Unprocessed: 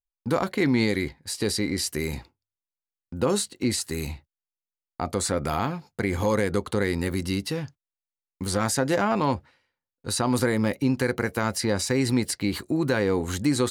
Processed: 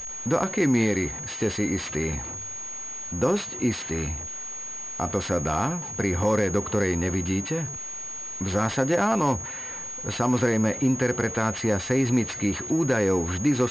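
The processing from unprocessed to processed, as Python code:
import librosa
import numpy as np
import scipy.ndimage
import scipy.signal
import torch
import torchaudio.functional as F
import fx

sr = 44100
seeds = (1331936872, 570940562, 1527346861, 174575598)

y = x + 0.5 * 10.0 ** (-35.0 / 20.0) * np.sign(x)
y = fx.pwm(y, sr, carrier_hz=6600.0)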